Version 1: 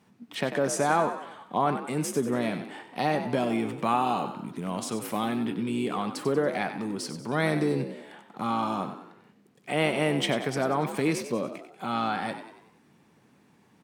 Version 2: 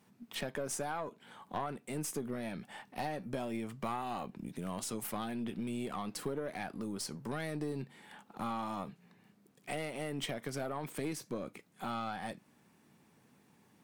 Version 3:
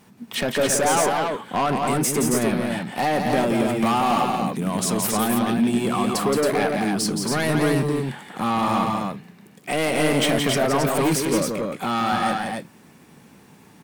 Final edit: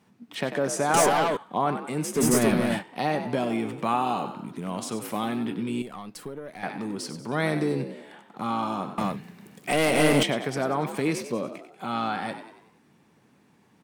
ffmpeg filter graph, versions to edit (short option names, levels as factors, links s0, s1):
-filter_complex "[2:a]asplit=3[s0][s1][s2];[0:a]asplit=5[s3][s4][s5][s6][s7];[s3]atrim=end=0.942[s8];[s0]atrim=start=0.938:end=1.372[s9];[s4]atrim=start=1.368:end=2.24[s10];[s1]atrim=start=2.14:end=2.84[s11];[s5]atrim=start=2.74:end=5.822[s12];[1:a]atrim=start=5.818:end=6.632[s13];[s6]atrim=start=6.628:end=8.982[s14];[s2]atrim=start=8.978:end=10.232[s15];[s7]atrim=start=10.228[s16];[s8][s9]acrossfade=d=0.004:c1=hsin:c2=hsin[s17];[s17][s10]acrossfade=d=0.004:c1=hsin:c2=hsin[s18];[s18][s11]acrossfade=d=0.1:c1=tri:c2=tri[s19];[s19][s12]acrossfade=d=0.1:c1=tri:c2=tri[s20];[s20][s13]acrossfade=d=0.004:c1=hsin:c2=hsin[s21];[s21][s14]acrossfade=d=0.004:c1=hsin:c2=hsin[s22];[s22][s15]acrossfade=d=0.004:c1=hsin:c2=hsin[s23];[s23][s16]acrossfade=d=0.004:c1=hsin:c2=hsin"